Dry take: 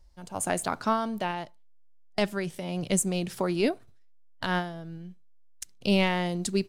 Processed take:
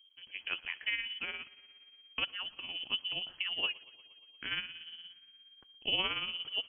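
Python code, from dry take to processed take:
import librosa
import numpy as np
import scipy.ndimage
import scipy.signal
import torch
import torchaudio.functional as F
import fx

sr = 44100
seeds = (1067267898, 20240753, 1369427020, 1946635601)

y = fx.echo_thinned(x, sr, ms=117, feedback_pct=71, hz=160.0, wet_db=-22.0)
y = y * (1.0 - 0.51 / 2.0 + 0.51 / 2.0 * np.cos(2.0 * np.pi * 17.0 * (np.arange(len(y)) / sr)))
y = fx.freq_invert(y, sr, carrier_hz=3200)
y = y * 10.0 ** (-7.0 / 20.0)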